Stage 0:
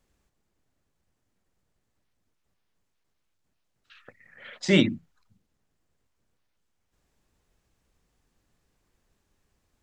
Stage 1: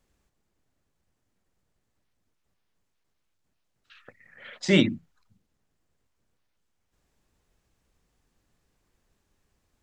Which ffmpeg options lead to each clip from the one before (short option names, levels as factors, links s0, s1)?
-af anull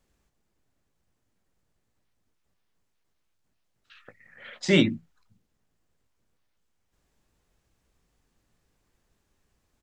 -filter_complex "[0:a]asplit=2[s0][s1];[s1]adelay=18,volume=0.224[s2];[s0][s2]amix=inputs=2:normalize=0"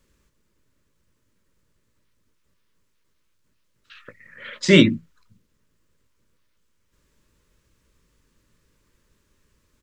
-af "asuperstop=centerf=750:order=4:qfactor=2.6,volume=2.24"